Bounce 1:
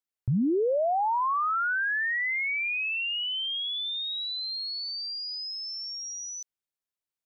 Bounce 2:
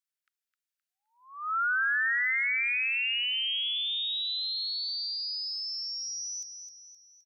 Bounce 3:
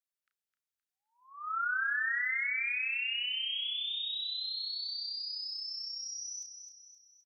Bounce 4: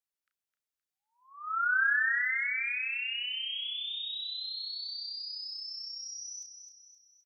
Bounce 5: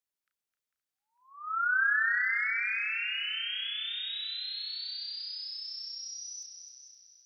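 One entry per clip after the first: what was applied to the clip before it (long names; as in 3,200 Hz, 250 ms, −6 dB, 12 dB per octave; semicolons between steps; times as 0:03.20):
Butterworth high-pass 1,300 Hz 96 dB per octave; on a send: repeating echo 260 ms, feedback 46%, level −8 dB
double-tracking delay 33 ms −7 dB; level −5.5 dB
dynamic equaliser 1,600 Hz, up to +7 dB, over −46 dBFS, Q 2.9; level −1 dB
tape delay 450 ms, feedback 54%, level −8 dB, low-pass 4,700 Hz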